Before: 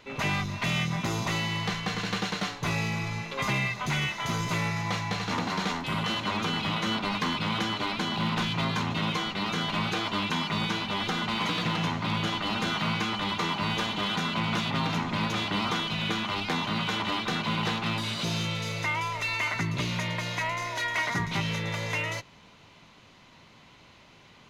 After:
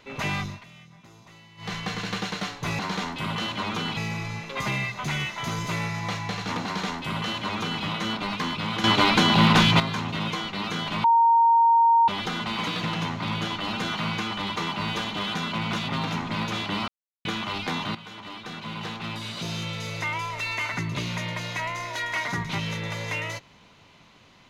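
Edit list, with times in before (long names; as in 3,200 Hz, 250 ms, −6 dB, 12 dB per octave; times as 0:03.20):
0:00.46–0:01.75: duck −21.5 dB, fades 0.18 s
0:05.47–0:06.65: duplicate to 0:02.79
0:07.66–0:08.62: clip gain +11 dB
0:09.86–0:10.90: beep over 925 Hz −14.5 dBFS
0:15.70–0:16.07: silence
0:16.77–0:18.84: fade in, from −15 dB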